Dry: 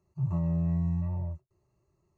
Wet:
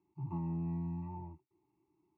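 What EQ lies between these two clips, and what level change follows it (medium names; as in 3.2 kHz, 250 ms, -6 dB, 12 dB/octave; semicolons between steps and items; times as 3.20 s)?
vowel filter u; +10.5 dB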